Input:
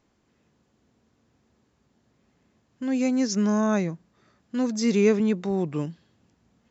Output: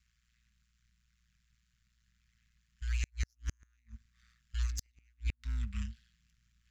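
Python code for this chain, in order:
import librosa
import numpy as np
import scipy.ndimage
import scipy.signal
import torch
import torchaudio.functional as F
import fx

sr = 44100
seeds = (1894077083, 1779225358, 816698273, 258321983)

y = np.where(x < 0.0, 10.0 ** (-12.0 / 20.0) * x, x)
y = scipy.signal.sosfilt(scipy.signal.cheby2(4, 50, [240.0, 780.0], 'bandstop', fs=sr, output='sos'), y)
y = y + 0.37 * np.pad(y, (int(5.1 * sr / 1000.0), 0))[:len(y)]
y = y * np.sin(2.0 * np.pi * 59.0 * np.arange(len(y)) / sr)
y = fx.gate_flip(y, sr, shuts_db=-24.0, range_db=-42)
y = y * librosa.db_to_amplitude(2.5)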